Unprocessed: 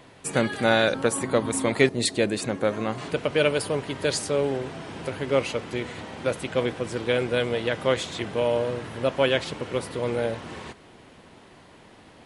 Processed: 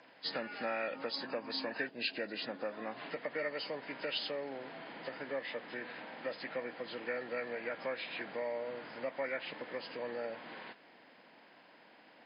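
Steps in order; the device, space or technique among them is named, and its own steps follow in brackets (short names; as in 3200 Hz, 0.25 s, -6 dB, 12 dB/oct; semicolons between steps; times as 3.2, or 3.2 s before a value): HPF 140 Hz 12 dB/oct; hearing aid with frequency lowering (nonlinear frequency compression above 1100 Hz 1.5:1; compressor 3:1, threshold -27 dBFS, peak gain reduction 10 dB; speaker cabinet 290–7000 Hz, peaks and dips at 390 Hz -9 dB, 1200 Hz -4 dB, 1800 Hz +4 dB, 3100 Hz +5 dB, 5600 Hz +7 dB); gain -7 dB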